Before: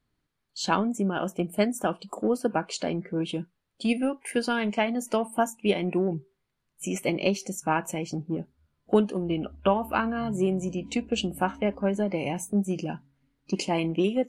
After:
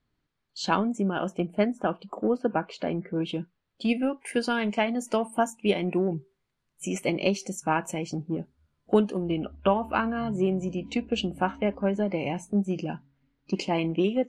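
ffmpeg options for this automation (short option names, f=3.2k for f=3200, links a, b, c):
-af "asetnsamples=n=441:p=0,asendcmd='1.47 lowpass f 2600;3.16 lowpass f 5100;4.2 lowpass f 9500;9.31 lowpass f 4800',lowpass=5.9k"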